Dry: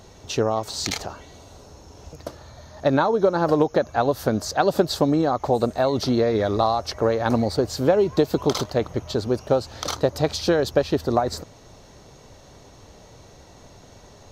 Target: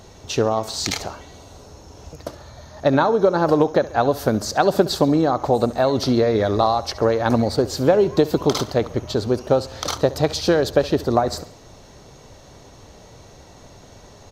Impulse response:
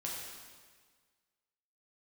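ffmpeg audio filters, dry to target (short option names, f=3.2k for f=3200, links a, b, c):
-af "aecho=1:1:68|136|204|272:0.126|0.0642|0.0327|0.0167,volume=2.5dB"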